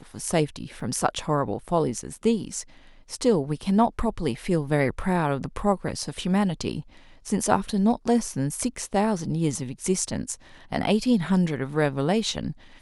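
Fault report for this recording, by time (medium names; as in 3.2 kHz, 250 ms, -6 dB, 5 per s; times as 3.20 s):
0.80 s: dropout 3.8 ms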